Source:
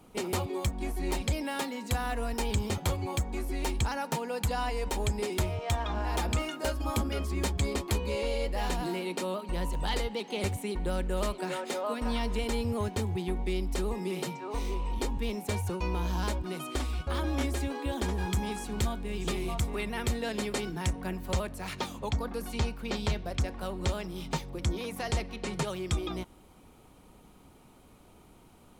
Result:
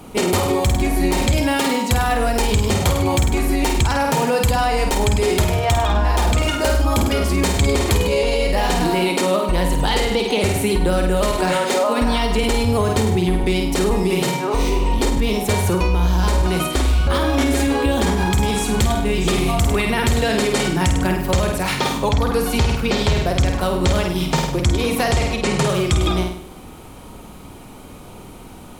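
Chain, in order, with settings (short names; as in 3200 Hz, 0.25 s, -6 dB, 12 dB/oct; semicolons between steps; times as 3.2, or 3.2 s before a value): 13.44–13.9 HPF 62 Hz; flutter echo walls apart 8.6 m, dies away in 0.55 s; maximiser +25 dB; gain -8.5 dB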